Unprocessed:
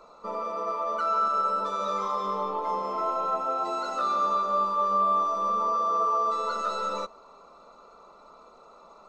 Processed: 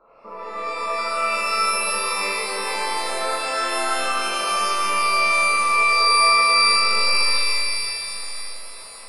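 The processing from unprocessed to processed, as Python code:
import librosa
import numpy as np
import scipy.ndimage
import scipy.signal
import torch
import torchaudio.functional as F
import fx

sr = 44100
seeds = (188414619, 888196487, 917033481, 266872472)

y = scipy.signal.sosfilt(scipy.signal.butter(2, 1400.0, 'lowpass', fs=sr, output='sos'), x)
y = y + 10.0 ** (-3.0 / 20.0) * np.pad(y, (int(74 * sr / 1000.0), 0))[:len(y)]
y = fx.rev_shimmer(y, sr, seeds[0], rt60_s=3.0, semitones=12, shimmer_db=-2, drr_db=-7.5)
y = y * librosa.db_to_amplitude(-6.0)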